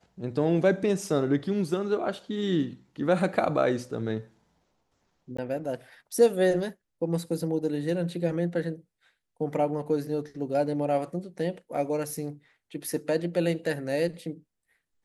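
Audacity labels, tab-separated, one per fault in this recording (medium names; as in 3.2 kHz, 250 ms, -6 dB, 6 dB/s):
5.370000	5.380000	dropout 15 ms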